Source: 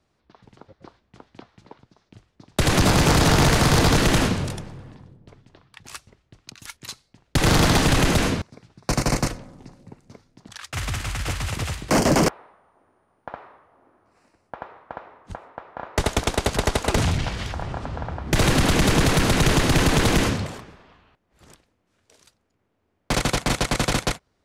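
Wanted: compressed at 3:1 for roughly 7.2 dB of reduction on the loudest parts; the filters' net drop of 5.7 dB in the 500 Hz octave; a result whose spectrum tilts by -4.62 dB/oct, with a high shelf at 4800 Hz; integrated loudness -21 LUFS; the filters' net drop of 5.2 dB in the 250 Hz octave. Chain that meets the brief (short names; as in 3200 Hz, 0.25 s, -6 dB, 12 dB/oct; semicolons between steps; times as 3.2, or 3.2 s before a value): bell 250 Hz -6 dB; bell 500 Hz -5.5 dB; high shelf 4800 Hz -9 dB; compressor 3:1, threshold -26 dBFS; gain +9 dB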